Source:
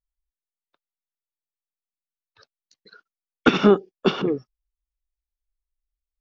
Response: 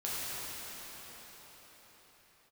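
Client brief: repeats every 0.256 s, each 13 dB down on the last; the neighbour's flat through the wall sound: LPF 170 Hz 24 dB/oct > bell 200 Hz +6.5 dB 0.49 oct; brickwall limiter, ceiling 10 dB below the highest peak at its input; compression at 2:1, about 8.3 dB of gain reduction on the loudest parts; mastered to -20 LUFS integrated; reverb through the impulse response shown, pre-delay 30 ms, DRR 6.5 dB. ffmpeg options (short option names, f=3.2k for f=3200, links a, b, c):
-filter_complex "[0:a]acompressor=threshold=-25dB:ratio=2,alimiter=limit=-19dB:level=0:latency=1,aecho=1:1:256|512|768:0.224|0.0493|0.0108,asplit=2[a][b];[1:a]atrim=start_sample=2205,adelay=30[c];[b][c]afir=irnorm=-1:irlink=0,volume=-13dB[d];[a][d]amix=inputs=2:normalize=0,lowpass=f=170:w=0.5412,lowpass=f=170:w=1.3066,equalizer=f=200:t=o:w=0.49:g=6.5,volume=20.5dB"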